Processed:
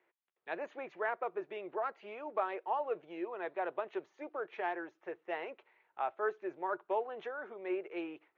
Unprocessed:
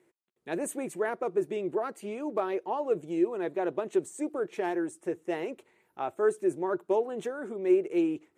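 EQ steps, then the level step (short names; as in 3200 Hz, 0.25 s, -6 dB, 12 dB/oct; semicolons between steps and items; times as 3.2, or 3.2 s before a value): brick-wall FIR low-pass 6900 Hz; air absorption 170 m; three-band isolator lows -22 dB, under 590 Hz, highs -21 dB, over 4000 Hz; +1.0 dB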